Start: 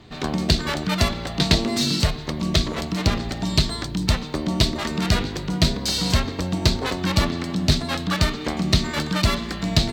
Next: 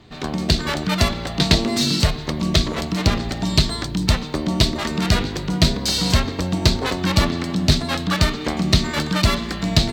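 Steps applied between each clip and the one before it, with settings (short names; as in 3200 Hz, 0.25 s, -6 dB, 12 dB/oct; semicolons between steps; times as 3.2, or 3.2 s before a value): AGC; gain -1 dB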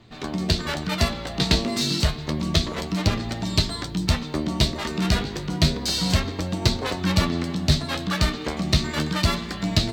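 flange 0.3 Hz, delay 8.6 ms, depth 7.5 ms, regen +46%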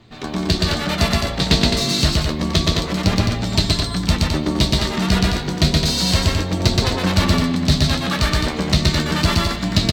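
loudspeakers at several distances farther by 42 m -1 dB, 73 m -5 dB; gain +2.5 dB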